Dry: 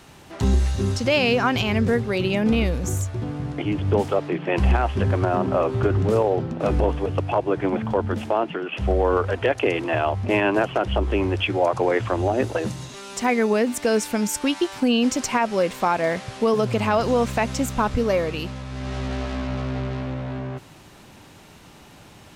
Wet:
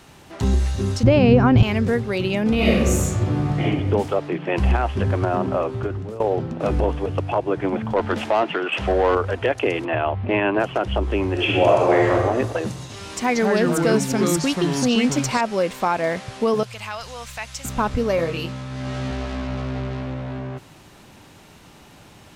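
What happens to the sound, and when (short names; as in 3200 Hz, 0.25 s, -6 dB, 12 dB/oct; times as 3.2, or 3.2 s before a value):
1.03–1.63 tilt -4.5 dB/oct
2.55–3.63 reverb throw, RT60 1.1 s, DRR -7 dB
5.46–6.2 fade out, to -17 dB
7.96–9.15 overdrive pedal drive 15 dB, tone 4300 Hz, clips at -9.5 dBFS
9.85–10.6 LPF 3400 Hz 24 dB/oct
11.31–12.13 reverb throw, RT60 1.3 s, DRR -3 dB
12.81–15.41 echoes that change speed 91 ms, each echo -4 st, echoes 2
16.63–17.65 passive tone stack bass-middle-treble 10-0-10
18.16–19.11 doubler 24 ms -4 dB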